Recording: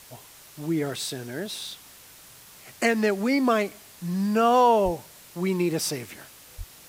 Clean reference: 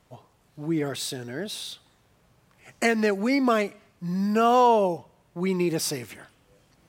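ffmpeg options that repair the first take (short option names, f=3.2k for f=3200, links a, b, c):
-filter_complex "[0:a]asplit=3[a][b][c];[a]afade=t=out:st=4.84:d=0.02[d];[b]highpass=f=140:w=0.5412,highpass=f=140:w=1.3066,afade=t=in:st=4.84:d=0.02,afade=t=out:st=4.96:d=0.02[e];[c]afade=t=in:st=4.96:d=0.02[f];[d][e][f]amix=inputs=3:normalize=0,asplit=3[g][h][i];[g]afade=t=out:st=6.57:d=0.02[j];[h]highpass=f=140:w=0.5412,highpass=f=140:w=1.3066,afade=t=in:st=6.57:d=0.02,afade=t=out:st=6.69:d=0.02[k];[i]afade=t=in:st=6.69:d=0.02[l];[j][k][l]amix=inputs=3:normalize=0,afftdn=nr=13:nf=-49"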